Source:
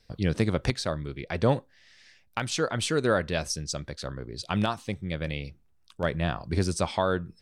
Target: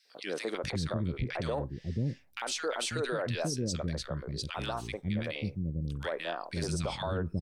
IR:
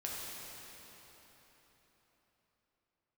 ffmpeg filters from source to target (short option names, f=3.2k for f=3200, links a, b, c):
-filter_complex "[0:a]acrossover=split=340|1500[a][b][c];[b]adelay=50[d];[a]adelay=540[e];[e][d][c]amix=inputs=3:normalize=0,alimiter=limit=-24dB:level=0:latency=1:release=27"